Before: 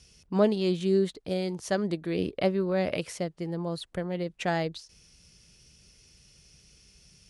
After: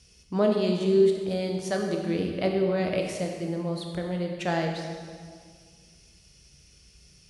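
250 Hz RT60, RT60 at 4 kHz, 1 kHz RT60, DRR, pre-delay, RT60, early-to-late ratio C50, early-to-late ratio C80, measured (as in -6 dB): 2.1 s, 1.6 s, 1.9 s, 1.5 dB, 15 ms, 1.9 s, 3.5 dB, 5.0 dB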